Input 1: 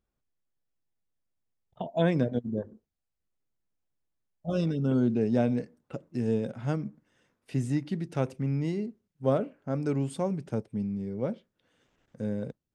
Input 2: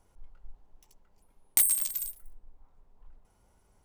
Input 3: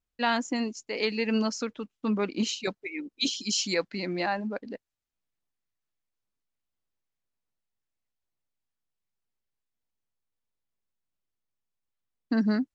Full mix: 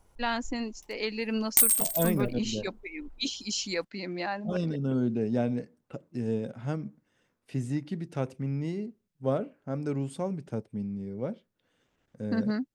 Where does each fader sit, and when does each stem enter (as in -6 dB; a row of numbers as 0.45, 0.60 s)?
-2.5, +2.5, -4.0 dB; 0.00, 0.00, 0.00 s